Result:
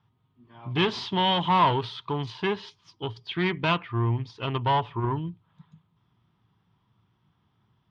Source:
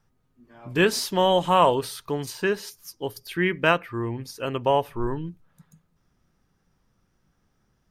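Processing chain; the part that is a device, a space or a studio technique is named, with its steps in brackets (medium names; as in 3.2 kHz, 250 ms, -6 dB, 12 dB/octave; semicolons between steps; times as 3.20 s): guitar amplifier (valve stage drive 20 dB, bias 0.5; tone controls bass +3 dB, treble +2 dB; cabinet simulation 99–3800 Hz, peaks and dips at 110 Hz +10 dB, 250 Hz -3 dB, 530 Hz -9 dB, 990 Hz +9 dB, 1.6 kHz -4 dB, 3.3 kHz +9 dB); trim +1 dB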